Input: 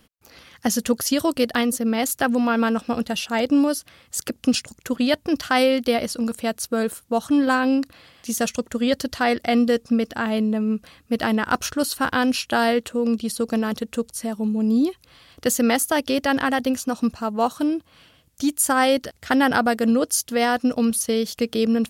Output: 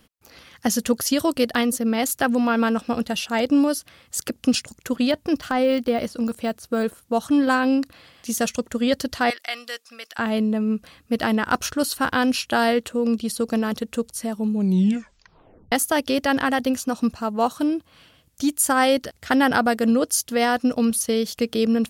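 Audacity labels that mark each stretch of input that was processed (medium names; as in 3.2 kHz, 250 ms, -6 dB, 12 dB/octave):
5.110000	7.020000	de-esser amount 85%
9.300000	10.190000	high-pass 1.4 kHz
14.540000	14.540000	tape stop 1.18 s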